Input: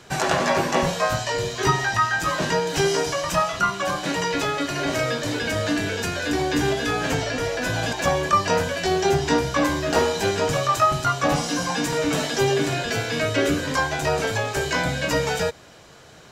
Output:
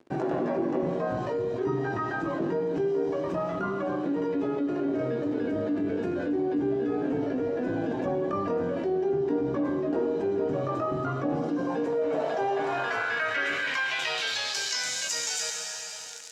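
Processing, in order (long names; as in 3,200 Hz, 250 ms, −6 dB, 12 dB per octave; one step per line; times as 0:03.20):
high-shelf EQ 3,900 Hz −3 dB
dead-zone distortion −40 dBFS
band-pass filter sweep 320 Hz → 6,700 Hz, 0:11.48–0:14.94
on a send at −6.5 dB: convolution reverb RT60 1.4 s, pre-delay 5 ms
on the sum: envelope flattener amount 70%
level −4 dB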